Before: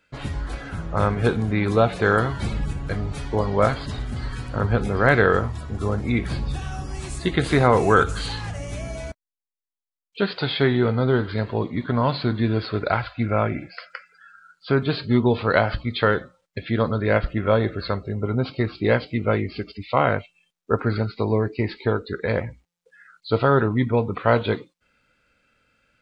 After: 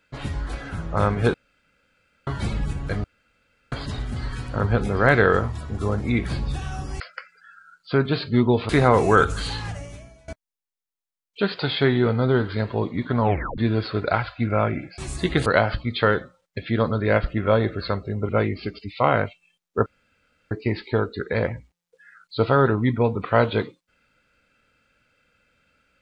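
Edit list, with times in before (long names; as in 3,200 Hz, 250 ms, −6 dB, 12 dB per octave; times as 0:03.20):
0:01.34–0:02.27: fill with room tone
0:03.04–0:03.72: fill with room tone
0:07.00–0:07.48: swap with 0:13.77–0:15.46
0:08.48–0:09.07: fade out quadratic, to −22.5 dB
0:11.99: tape stop 0.38 s
0:18.29–0:19.22: remove
0:20.79–0:21.44: fill with room tone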